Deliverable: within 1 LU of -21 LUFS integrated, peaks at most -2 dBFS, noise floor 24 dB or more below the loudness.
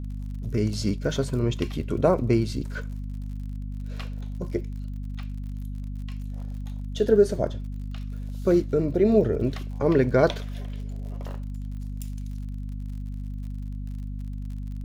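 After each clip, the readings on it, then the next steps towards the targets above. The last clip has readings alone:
ticks 53/s; hum 50 Hz; harmonics up to 250 Hz; hum level -30 dBFS; loudness -27.5 LUFS; peak -7.0 dBFS; loudness target -21.0 LUFS
-> de-click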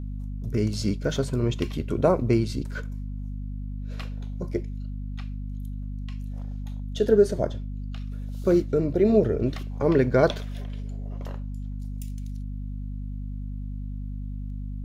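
ticks 0.13/s; hum 50 Hz; harmonics up to 250 Hz; hum level -30 dBFS
-> notches 50/100/150/200/250 Hz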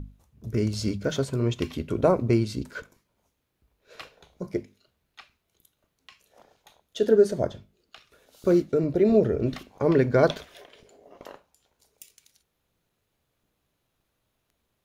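hum none; loudness -24.5 LUFS; peak -6.5 dBFS; loudness target -21.0 LUFS
-> gain +3.5 dB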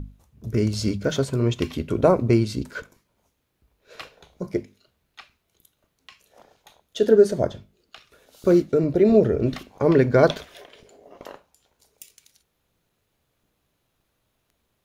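loudness -21.0 LUFS; peak -3.0 dBFS; noise floor -74 dBFS

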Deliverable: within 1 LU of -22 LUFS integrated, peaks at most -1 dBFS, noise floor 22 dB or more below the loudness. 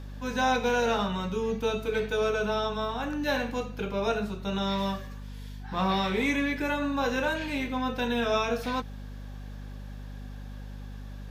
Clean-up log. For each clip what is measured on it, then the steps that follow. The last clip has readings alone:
hum 50 Hz; harmonics up to 250 Hz; hum level -38 dBFS; loudness -29.0 LUFS; peak -14.5 dBFS; loudness target -22.0 LUFS
-> notches 50/100/150/200/250 Hz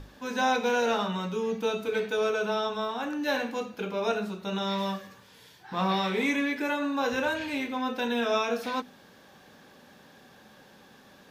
hum none; loudness -29.0 LUFS; peak -14.5 dBFS; loudness target -22.0 LUFS
-> gain +7 dB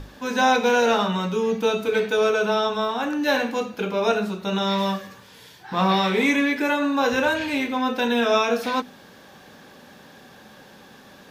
loudness -22.0 LUFS; peak -7.5 dBFS; noise floor -48 dBFS

